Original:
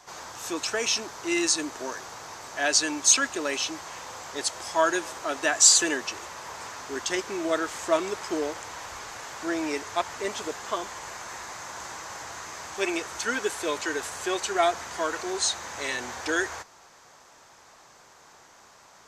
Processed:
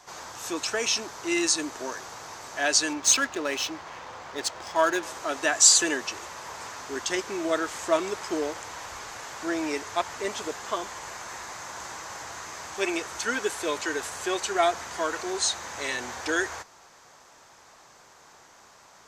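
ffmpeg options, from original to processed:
-filter_complex "[0:a]asettb=1/sr,asplit=3[a][b][c];[a]atrim=end=2.934[d];[b]atrim=start=2.93:end=5.03,asetpts=PTS-STARTPTS,afade=t=in:d=0.004:c=qsin,afade=t=out:st=2.096:d=0.004:c=qsin,adynamicsmooth=sensitivity=7.5:basefreq=3k[e];[c]atrim=start=5.026[f];[d][e]acrossfade=d=0.004:c1=hsin:c2=qsin[g];[g][f]acrossfade=d=0.004:c1=qsin:c2=hsin"

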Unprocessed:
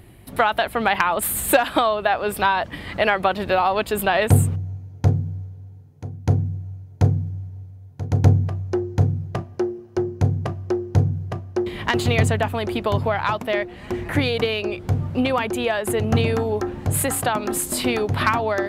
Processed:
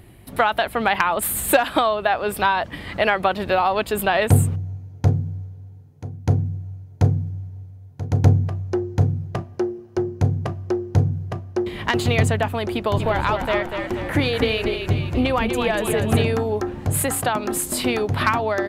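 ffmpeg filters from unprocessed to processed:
-filter_complex "[0:a]asplit=3[a][b][c];[a]afade=t=out:st=12.96:d=0.02[d];[b]asplit=8[e][f][g][h][i][j][k][l];[f]adelay=241,afreqshift=-31,volume=-6dB[m];[g]adelay=482,afreqshift=-62,volume=-11.5dB[n];[h]adelay=723,afreqshift=-93,volume=-17dB[o];[i]adelay=964,afreqshift=-124,volume=-22.5dB[p];[j]adelay=1205,afreqshift=-155,volume=-28.1dB[q];[k]adelay=1446,afreqshift=-186,volume=-33.6dB[r];[l]adelay=1687,afreqshift=-217,volume=-39.1dB[s];[e][m][n][o][p][q][r][s]amix=inputs=8:normalize=0,afade=t=in:st=12.96:d=0.02,afade=t=out:st=16.22:d=0.02[t];[c]afade=t=in:st=16.22:d=0.02[u];[d][t][u]amix=inputs=3:normalize=0"

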